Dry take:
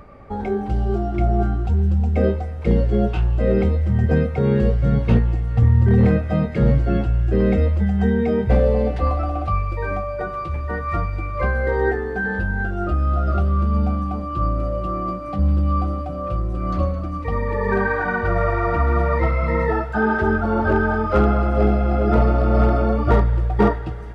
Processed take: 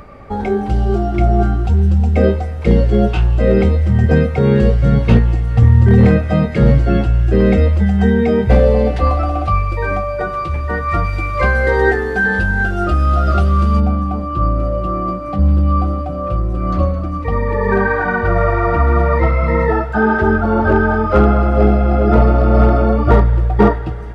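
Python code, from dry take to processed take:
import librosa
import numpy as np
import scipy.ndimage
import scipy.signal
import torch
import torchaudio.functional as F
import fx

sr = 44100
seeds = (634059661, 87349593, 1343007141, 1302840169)

y = fx.high_shelf(x, sr, hz=2200.0, db=fx.steps((0.0, 5.0), (11.04, 12.0), (13.79, -2.5)))
y = y * librosa.db_to_amplitude(5.5)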